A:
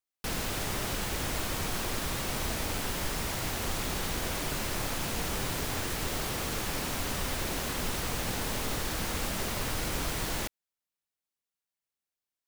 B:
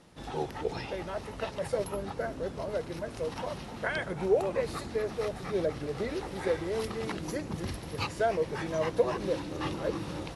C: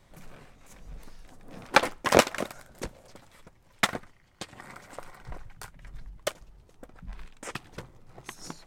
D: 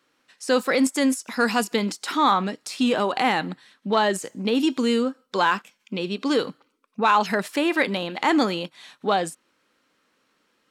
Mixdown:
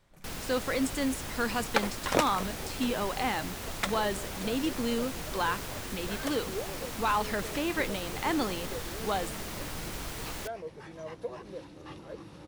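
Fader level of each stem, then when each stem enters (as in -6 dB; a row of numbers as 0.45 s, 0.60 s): -6.0 dB, -11.5 dB, -7.5 dB, -9.5 dB; 0.00 s, 2.25 s, 0.00 s, 0.00 s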